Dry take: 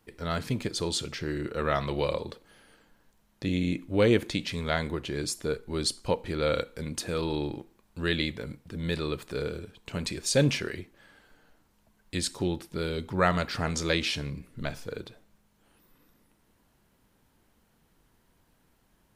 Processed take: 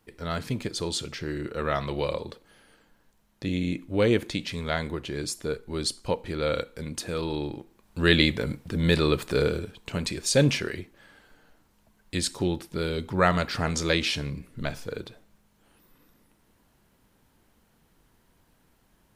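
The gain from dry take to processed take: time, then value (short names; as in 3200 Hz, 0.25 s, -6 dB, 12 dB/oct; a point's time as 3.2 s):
7.6 s 0 dB
8.13 s +8.5 dB
9.44 s +8.5 dB
10.06 s +2.5 dB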